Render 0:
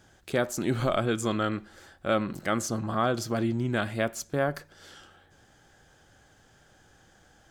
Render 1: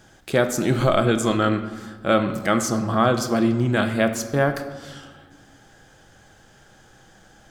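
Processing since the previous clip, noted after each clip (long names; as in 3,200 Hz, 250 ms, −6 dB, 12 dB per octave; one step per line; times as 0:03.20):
convolution reverb RT60 1.4 s, pre-delay 4 ms, DRR 7.5 dB
level +6.5 dB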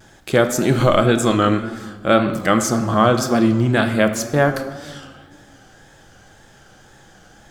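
four-comb reverb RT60 1.6 s, combs from 27 ms, DRR 18.5 dB
pitch vibrato 1.9 Hz 68 cents
level +4 dB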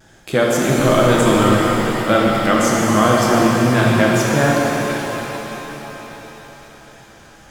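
reverb with rising layers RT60 4 s, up +7 semitones, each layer −8 dB, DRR −3 dB
level −2.5 dB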